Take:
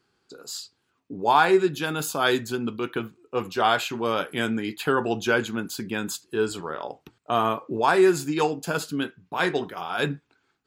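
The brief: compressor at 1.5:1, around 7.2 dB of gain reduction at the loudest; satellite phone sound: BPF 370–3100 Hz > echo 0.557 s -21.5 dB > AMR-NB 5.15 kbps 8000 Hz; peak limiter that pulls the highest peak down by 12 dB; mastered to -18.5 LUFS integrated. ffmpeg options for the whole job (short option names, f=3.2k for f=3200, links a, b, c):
-af "acompressor=threshold=-34dB:ratio=1.5,alimiter=level_in=1dB:limit=-24dB:level=0:latency=1,volume=-1dB,highpass=370,lowpass=3.1k,aecho=1:1:557:0.0841,volume=21.5dB" -ar 8000 -c:a libopencore_amrnb -b:a 5150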